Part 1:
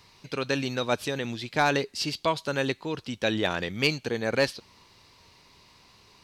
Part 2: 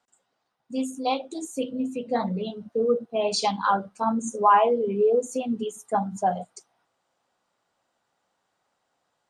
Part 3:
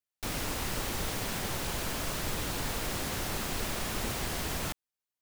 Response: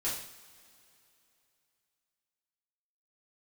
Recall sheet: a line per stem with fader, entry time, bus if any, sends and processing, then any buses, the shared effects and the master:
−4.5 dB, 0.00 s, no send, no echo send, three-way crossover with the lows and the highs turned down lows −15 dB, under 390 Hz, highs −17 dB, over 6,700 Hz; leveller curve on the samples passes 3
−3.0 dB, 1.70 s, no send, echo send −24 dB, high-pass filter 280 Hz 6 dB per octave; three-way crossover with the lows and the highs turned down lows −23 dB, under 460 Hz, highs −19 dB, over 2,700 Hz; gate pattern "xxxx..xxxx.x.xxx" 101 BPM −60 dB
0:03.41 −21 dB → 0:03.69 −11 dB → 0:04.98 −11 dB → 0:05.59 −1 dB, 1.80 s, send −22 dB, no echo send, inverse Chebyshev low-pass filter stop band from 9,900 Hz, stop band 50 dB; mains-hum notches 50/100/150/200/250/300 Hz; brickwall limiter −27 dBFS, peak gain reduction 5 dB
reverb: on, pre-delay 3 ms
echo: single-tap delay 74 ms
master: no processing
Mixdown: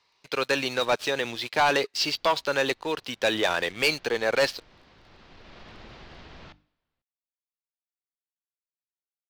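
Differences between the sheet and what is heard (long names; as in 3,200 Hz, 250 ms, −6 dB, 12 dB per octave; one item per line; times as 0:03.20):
stem 2: muted
stem 3 −21.0 dB → −30.5 dB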